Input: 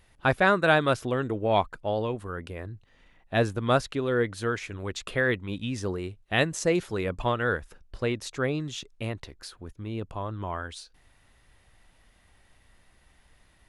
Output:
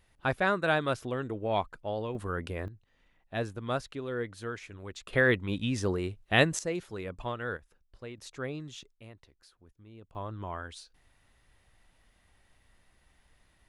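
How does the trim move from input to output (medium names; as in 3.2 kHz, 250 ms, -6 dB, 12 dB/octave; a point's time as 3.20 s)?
-6 dB
from 2.15 s +1.5 dB
from 2.68 s -9 dB
from 5.13 s +1 dB
from 6.59 s -9 dB
from 7.57 s -15.5 dB
from 8.18 s -9 dB
from 8.92 s -17.5 dB
from 10.15 s -5 dB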